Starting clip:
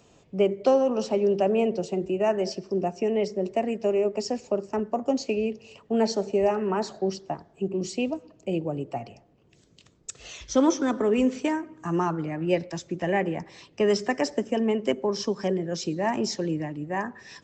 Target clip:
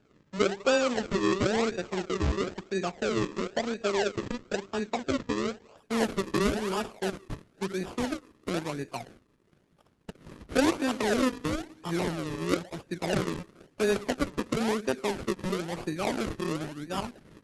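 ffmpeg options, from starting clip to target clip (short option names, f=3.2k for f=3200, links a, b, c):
-af "acrusher=samples=41:mix=1:aa=0.000001:lfo=1:lforange=41:lforate=0.99,volume=-3.5dB" -ar 48000 -c:a libopus -b:a 12k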